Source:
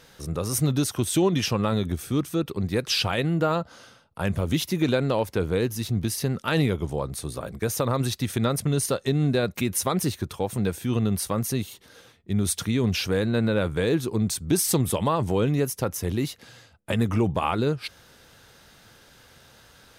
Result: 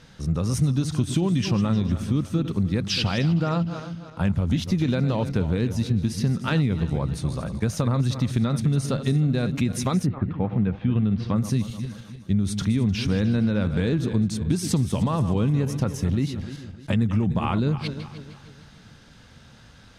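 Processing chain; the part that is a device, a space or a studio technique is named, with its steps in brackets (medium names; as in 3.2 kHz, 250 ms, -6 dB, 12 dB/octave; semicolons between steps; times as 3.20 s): backward echo that repeats 152 ms, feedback 59%, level -12 dB; jukebox (low-pass 6.7 kHz 12 dB/octave; resonant low shelf 290 Hz +7 dB, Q 1.5; compression 4:1, threshold -19 dBFS, peak gain reduction 7.5 dB); 10.05–11.34 s: low-pass 1.8 kHz -> 4.3 kHz 24 dB/octave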